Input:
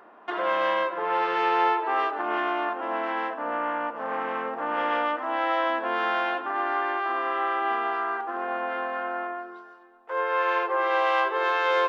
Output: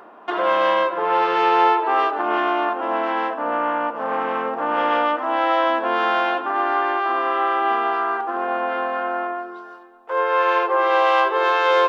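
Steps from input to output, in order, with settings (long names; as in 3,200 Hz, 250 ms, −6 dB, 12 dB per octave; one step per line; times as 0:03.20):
parametric band 1,900 Hz −4.5 dB 0.63 octaves
reversed playback
upward compression, threshold −41 dBFS
reversed playback
level +7 dB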